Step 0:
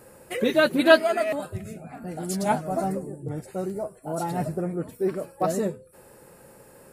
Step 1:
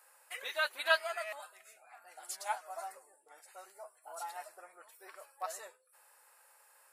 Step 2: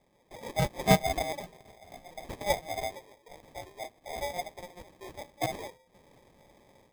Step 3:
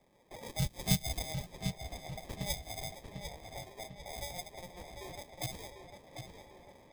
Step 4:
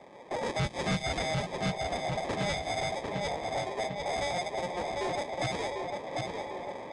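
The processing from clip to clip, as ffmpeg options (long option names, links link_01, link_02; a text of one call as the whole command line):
ffmpeg -i in.wav -af "highpass=frequency=850:width=0.5412,highpass=frequency=850:width=1.3066,volume=-8dB" out.wav
ffmpeg -i in.wav -af "tiltshelf=frequency=760:gain=7,dynaudnorm=framelen=340:gausssize=3:maxgain=9dB,acrusher=samples=31:mix=1:aa=0.000001" out.wav
ffmpeg -i in.wav -filter_complex "[0:a]acrossover=split=170|3000[link_01][link_02][link_03];[link_02]acompressor=threshold=-45dB:ratio=5[link_04];[link_01][link_04][link_03]amix=inputs=3:normalize=0,asplit=2[link_05][link_06];[link_06]adelay=748,lowpass=frequency=4200:poles=1,volume=-6dB,asplit=2[link_07][link_08];[link_08]adelay=748,lowpass=frequency=4200:poles=1,volume=0.52,asplit=2[link_09][link_10];[link_10]adelay=748,lowpass=frequency=4200:poles=1,volume=0.52,asplit=2[link_11][link_12];[link_12]adelay=748,lowpass=frequency=4200:poles=1,volume=0.52,asplit=2[link_13][link_14];[link_14]adelay=748,lowpass=frequency=4200:poles=1,volume=0.52,asplit=2[link_15][link_16];[link_16]adelay=748,lowpass=frequency=4200:poles=1,volume=0.52[link_17];[link_07][link_09][link_11][link_13][link_15][link_17]amix=inputs=6:normalize=0[link_18];[link_05][link_18]amix=inputs=2:normalize=0" out.wav
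ffmpeg -i in.wav -filter_complex "[0:a]asplit=2[link_01][link_02];[link_02]highpass=frequency=720:poles=1,volume=29dB,asoftclip=type=tanh:threshold=-11dB[link_03];[link_01][link_03]amix=inputs=2:normalize=0,lowpass=frequency=1100:poles=1,volume=-6dB,asoftclip=type=tanh:threshold=-26dB,aresample=22050,aresample=44100,volume=1dB" out.wav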